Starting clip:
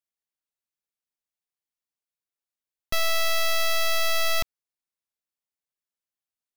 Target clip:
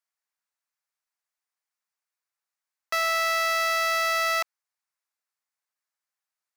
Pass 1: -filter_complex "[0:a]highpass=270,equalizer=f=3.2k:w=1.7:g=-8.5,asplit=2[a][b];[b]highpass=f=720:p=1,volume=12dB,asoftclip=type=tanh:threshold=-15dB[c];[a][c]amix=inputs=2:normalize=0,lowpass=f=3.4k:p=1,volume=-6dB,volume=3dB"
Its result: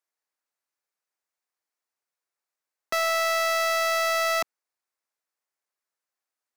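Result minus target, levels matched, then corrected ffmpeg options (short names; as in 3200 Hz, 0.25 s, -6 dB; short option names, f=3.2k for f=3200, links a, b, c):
250 Hz band +10.0 dB
-filter_complex "[0:a]highpass=790,equalizer=f=3.2k:w=1.7:g=-8.5,asplit=2[a][b];[b]highpass=f=720:p=1,volume=12dB,asoftclip=type=tanh:threshold=-15dB[c];[a][c]amix=inputs=2:normalize=0,lowpass=f=3.4k:p=1,volume=-6dB,volume=3dB"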